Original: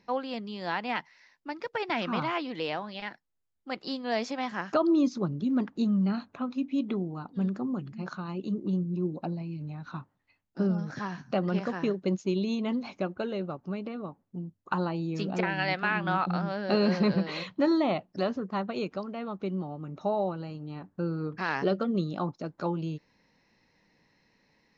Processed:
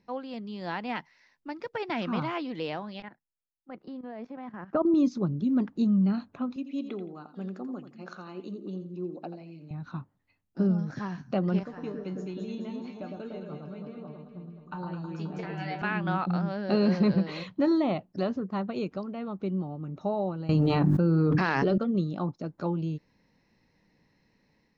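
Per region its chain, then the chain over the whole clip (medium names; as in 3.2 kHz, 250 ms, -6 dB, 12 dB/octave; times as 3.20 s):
3.02–4.94 s: low-pass 1.7 kHz + level held to a coarse grid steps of 13 dB + three bands expanded up and down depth 40%
6.56–9.71 s: high-pass 370 Hz + peaking EQ 970 Hz -7 dB 0.24 oct + feedback delay 85 ms, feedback 24%, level -11 dB
11.63–15.82 s: feedback comb 150 Hz, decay 0.23 s, mix 80% + echo whose repeats swap between lows and highs 106 ms, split 1.3 kHz, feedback 77%, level -3 dB
20.49–21.78 s: hum notches 50/100/150/200/250/300/350 Hz + level flattener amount 100%
whole clip: bass shelf 400 Hz +8 dB; level rider gain up to 4 dB; trim -8 dB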